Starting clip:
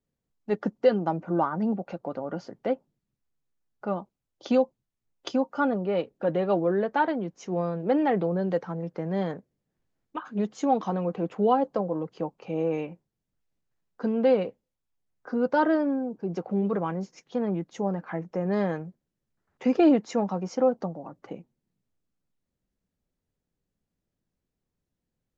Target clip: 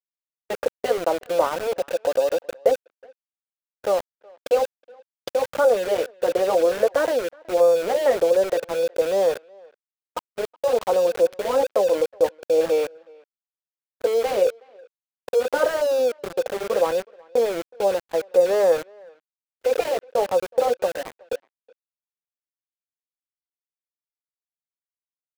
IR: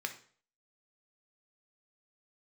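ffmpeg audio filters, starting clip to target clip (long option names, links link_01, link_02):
-filter_complex "[0:a]afftfilt=real='re*lt(hypot(re,im),0.501)':imag='im*lt(hypot(re,im),0.501)':win_size=1024:overlap=0.75,highpass=frequency=510:width_type=q:width=6,aeval=exprs='val(0)*gte(abs(val(0)),0.0335)':channel_layout=same,agate=range=-39dB:threshold=-35dB:ratio=16:detection=peak,asplit=2[link_01][link_02];[link_02]adelay=370,highpass=300,lowpass=3400,asoftclip=type=hard:threshold=-17dB,volume=-26dB[link_03];[link_01][link_03]amix=inputs=2:normalize=0,volume=2dB"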